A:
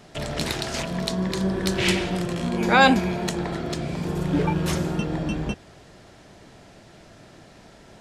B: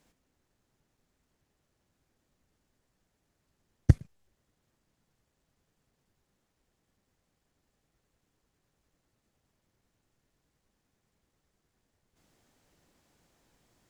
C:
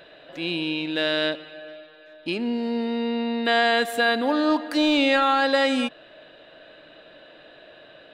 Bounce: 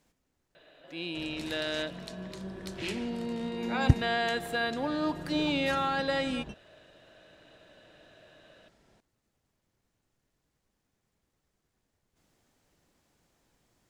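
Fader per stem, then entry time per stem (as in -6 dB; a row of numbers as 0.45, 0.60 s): -16.5, -1.5, -9.5 dB; 1.00, 0.00, 0.55 s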